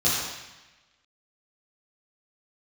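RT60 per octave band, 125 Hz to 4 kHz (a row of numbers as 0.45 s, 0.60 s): 1.2 s, 1.1 s, 1.0 s, 1.1 s, 1.3 s, 1.1 s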